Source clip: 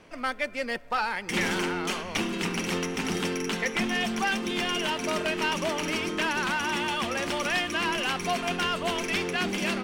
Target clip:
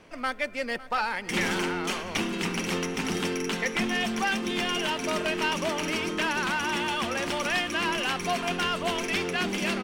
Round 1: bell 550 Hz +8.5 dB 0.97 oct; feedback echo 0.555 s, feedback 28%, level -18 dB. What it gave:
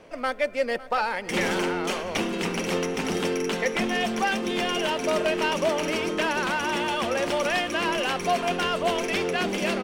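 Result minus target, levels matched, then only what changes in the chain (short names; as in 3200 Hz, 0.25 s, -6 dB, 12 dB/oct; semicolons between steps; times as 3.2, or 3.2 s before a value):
500 Hz band +4.0 dB
remove: bell 550 Hz +8.5 dB 0.97 oct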